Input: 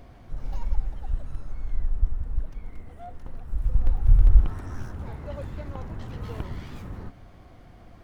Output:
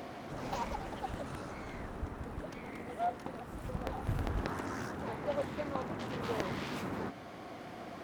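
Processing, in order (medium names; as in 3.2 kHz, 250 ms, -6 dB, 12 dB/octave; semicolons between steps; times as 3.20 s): high-pass 240 Hz 12 dB/octave; gain riding within 3 dB 2 s; loudspeaker Doppler distortion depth 0.87 ms; trim +7 dB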